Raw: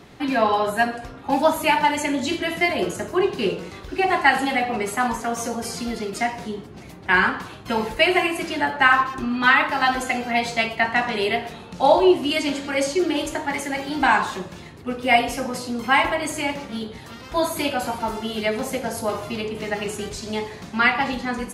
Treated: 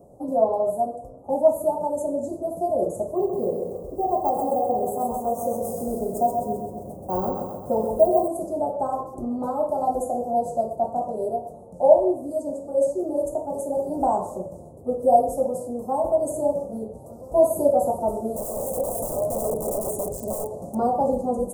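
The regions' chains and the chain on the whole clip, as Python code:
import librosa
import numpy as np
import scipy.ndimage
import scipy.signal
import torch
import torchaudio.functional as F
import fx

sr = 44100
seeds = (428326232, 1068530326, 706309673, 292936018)

y = fx.chain(x, sr, fx.echo_feedback(ms=131, feedback_pct=53, wet_db=-5),
    fx.resample_bad(factor=2, down='none', up='hold'), at=(3.16, 8.28))
y = fx.chain(y, sr, fx.low_shelf(hz=120.0, db=-4.0),
    fx.overflow_wrap(gain_db=24.5), at=(18.36, 20.75))
y = scipy.signal.sosfilt(scipy.signal.cheby1(3, 1.0, [560.0, 8400.0], 'bandstop', fs=sr, output='sos'), y)
y = fx.band_shelf(y, sr, hz=860.0, db=14.0, octaves=1.7)
y = fx.rider(y, sr, range_db=10, speed_s=2.0)
y = F.gain(torch.from_numpy(y), -6.0).numpy()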